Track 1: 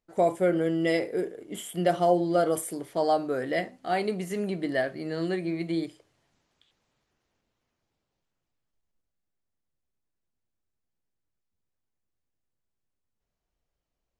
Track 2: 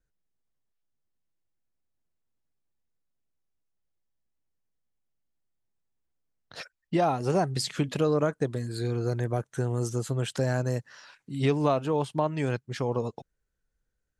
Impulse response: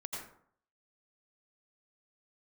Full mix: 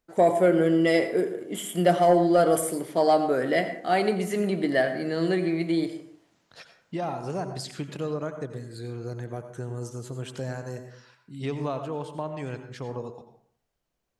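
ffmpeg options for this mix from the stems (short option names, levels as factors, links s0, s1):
-filter_complex "[0:a]highpass=100,asoftclip=type=tanh:threshold=0.251,volume=1.26,asplit=2[s0][s1];[s1]volume=0.531[s2];[1:a]volume=0.335,asplit=2[s3][s4];[s4]volume=0.708[s5];[2:a]atrim=start_sample=2205[s6];[s2][s5]amix=inputs=2:normalize=0[s7];[s7][s6]afir=irnorm=-1:irlink=0[s8];[s0][s3][s8]amix=inputs=3:normalize=0"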